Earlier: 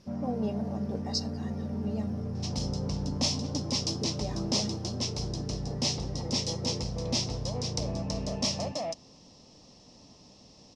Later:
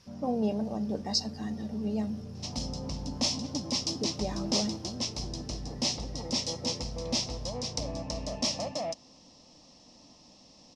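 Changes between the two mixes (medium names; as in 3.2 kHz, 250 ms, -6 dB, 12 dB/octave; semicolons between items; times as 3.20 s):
speech +3.5 dB; first sound -8.0 dB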